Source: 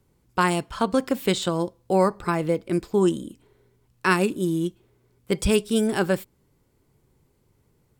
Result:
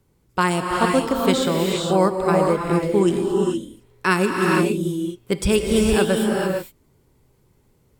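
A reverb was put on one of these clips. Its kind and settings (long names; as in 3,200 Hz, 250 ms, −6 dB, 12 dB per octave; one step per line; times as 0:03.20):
reverb whose tail is shaped and stops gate 490 ms rising, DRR 0 dB
level +1.5 dB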